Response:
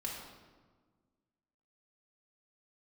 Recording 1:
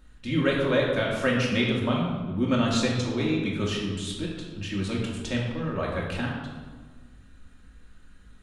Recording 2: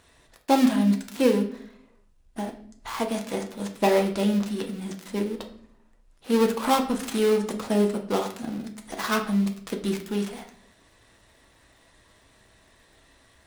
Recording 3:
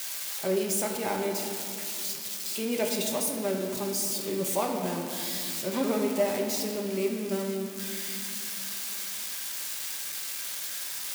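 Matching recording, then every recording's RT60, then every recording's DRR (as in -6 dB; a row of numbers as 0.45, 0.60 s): 1; 1.5, 0.60, 2.7 s; -4.0, 2.5, 0.5 dB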